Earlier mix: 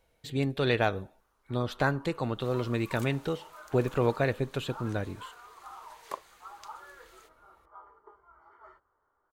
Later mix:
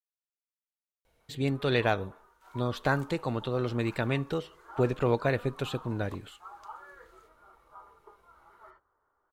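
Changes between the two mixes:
speech: entry +1.05 s; second sound -11.0 dB

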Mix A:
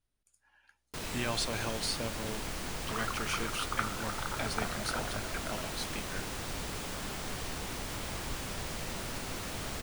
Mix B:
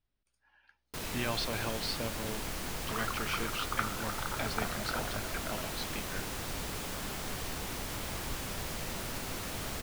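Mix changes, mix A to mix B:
speech: add polynomial smoothing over 15 samples; master: add bell 13000 Hz +12 dB 0.2 oct

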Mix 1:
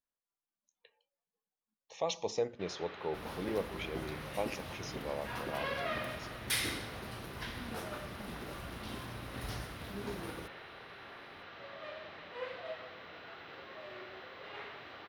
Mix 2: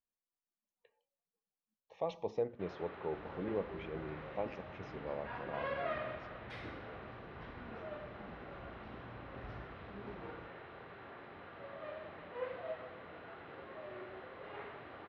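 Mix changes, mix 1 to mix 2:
first sound +3.5 dB; second sound -6.5 dB; master: add tape spacing loss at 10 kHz 42 dB

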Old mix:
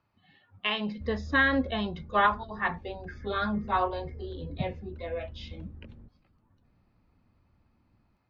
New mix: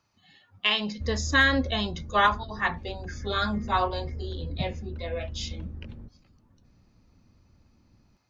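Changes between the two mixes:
speech: remove air absorption 350 m; background +7.0 dB

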